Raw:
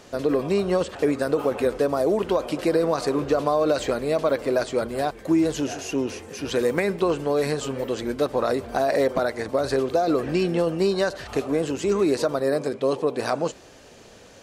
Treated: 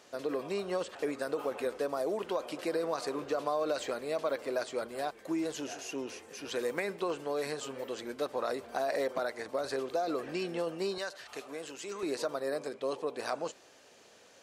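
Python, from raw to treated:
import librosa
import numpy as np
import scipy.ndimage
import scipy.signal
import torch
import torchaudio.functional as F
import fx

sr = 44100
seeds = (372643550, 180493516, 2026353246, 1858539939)

y = fx.highpass(x, sr, hz=fx.steps((0.0, 500.0), (10.98, 1400.0), (12.03, 530.0)), slope=6)
y = y * 10.0 ** (-8.0 / 20.0)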